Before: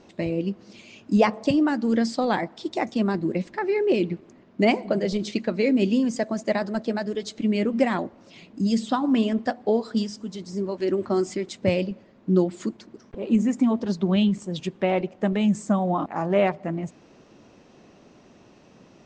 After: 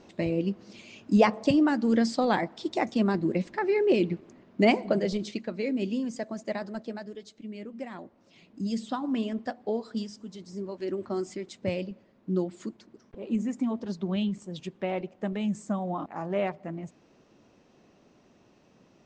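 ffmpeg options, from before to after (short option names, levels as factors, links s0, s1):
-af "volume=2.37,afade=t=out:st=4.93:d=0.48:silence=0.446684,afade=t=out:st=6.69:d=0.71:silence=0.375837,afade=t=in:st=7.9:d=0.7:silence=0.354813"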